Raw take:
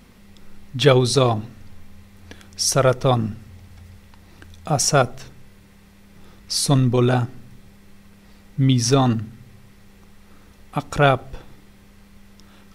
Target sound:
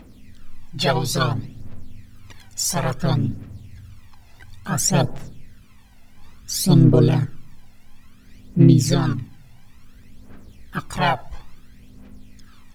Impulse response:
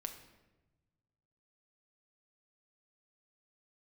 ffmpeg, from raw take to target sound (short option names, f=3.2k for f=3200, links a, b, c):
-filter_complex "[0:a]aphaser=in_gain=1:out_gain=1:delay=1.5:decay=0.74:speed=0.58:type=triangular,asplit=2[a][b];[b]asetrate=55563,aresample=44100,atempo=0.793701,volume=-1dB[c];[a][c]amix=inputs=2:normalize=0,volume=-8dB"